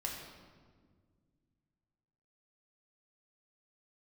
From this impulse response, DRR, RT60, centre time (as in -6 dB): -1.0 dB, 1.7 s, 61 ms